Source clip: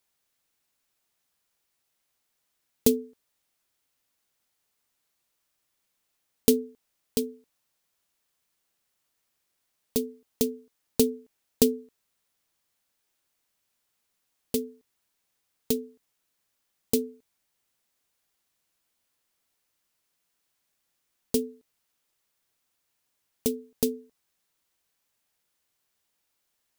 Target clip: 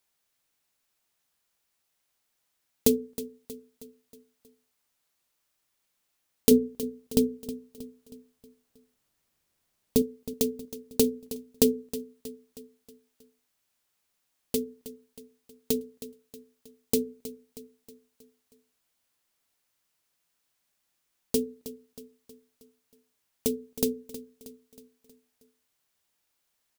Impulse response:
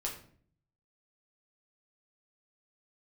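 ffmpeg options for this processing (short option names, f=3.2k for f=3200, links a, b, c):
-filter_complex "[0:a]bandreject=f=60:t=h:w=6,bandreject=f=120:t=h:w=6,bandreject=f=180:t=h:w=6,bandreject=f=240:t=h:w=6,bandreject=f=300:t=h:w=6,bandreject=f=360:t=h:w=6,bandreject=f=420:t=h:w=6,bandreject=f=480:t=h:w=6,bandreject=f=540:t=h:w=6,asettb=1/sr,asplit=3[a][b][c];[a]atrim=end=6.514[d];[b]atrim=start=6.51:end=10.02,asetpts=PTS-STARTPTS,afade=t=in:d=0.004:c=qsin,afade=t=out:st=3.506:d=0.004:c=qsin,lowshelf=f=410:g=9.5[e];[c]atrim=start=10.016[f];[d][e]acrossfade=d=0.004:c1=hsin:c2=qsin[g];[g][f]acrossfade=d=0.004:c1=qsin:c2=hsin,aecho=1:1:317|634|951|1268|1585:0.188|0.0961|0.049|0.025|0.0127"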